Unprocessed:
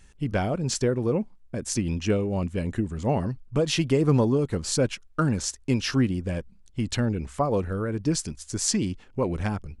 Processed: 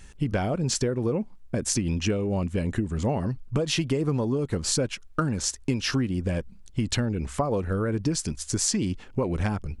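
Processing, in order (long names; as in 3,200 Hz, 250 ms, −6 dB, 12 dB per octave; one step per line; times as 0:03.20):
downward compressor 6 to 1, threshold −29 dBFS, peak gain reduction 13 dB
level +6.5 dB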